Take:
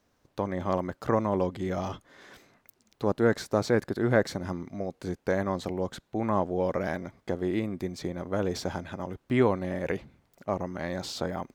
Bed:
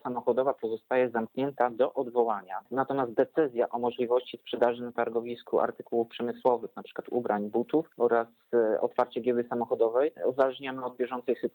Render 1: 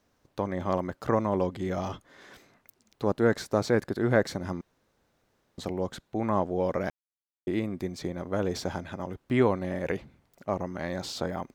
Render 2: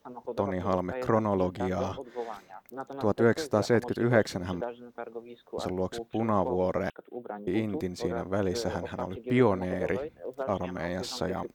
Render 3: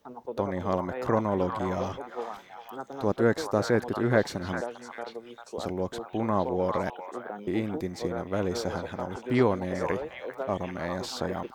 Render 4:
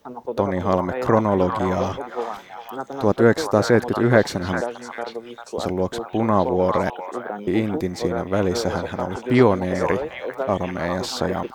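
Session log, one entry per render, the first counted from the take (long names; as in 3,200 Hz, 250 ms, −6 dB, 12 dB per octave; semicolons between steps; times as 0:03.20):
0:04.61–0:05.58: fill with room tone; 0:06.90–0:07.47: silence
mix in bed −10.5 dB
echo through a band-pass that steps 398 ms, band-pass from 1,100 Hz, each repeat 1.4 octaves, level −3 dB
level +8 dB; brickwall limiter −2 dBFS, peak gain reduction 1 dB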